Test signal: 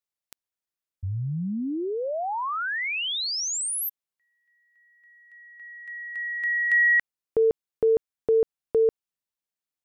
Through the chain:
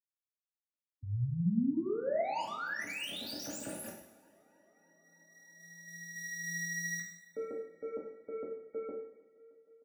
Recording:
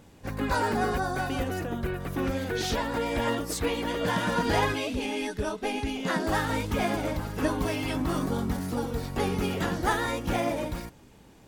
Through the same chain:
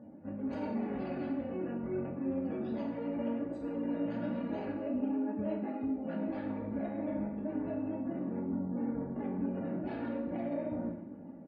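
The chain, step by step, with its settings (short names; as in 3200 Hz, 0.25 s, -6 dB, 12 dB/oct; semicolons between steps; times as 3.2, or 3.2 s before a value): median filter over 41 samples; HPF 130 Hz 12 dB/oct; spectral gate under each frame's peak -30 dB strong; comb 3.5 ms, depth 55%; reverse; compressor 12:1, threshold -37 dBFS; reverse; limiter -36.5 dBFS; AGC gain up to 3.5 dB; small resonant body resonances 220/620 Hz, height 7 dB, ringing for 20 ms; flange 0.37 Hz, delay 8.7 ms, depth 9.3 ms, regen -43%; on a send: tape echo 0.31 s, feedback 85%, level -24 dB, low-pass 2200 Hz; on the sum: two-slope reverb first 0.7 s, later 1.9 s, DRR -1 dB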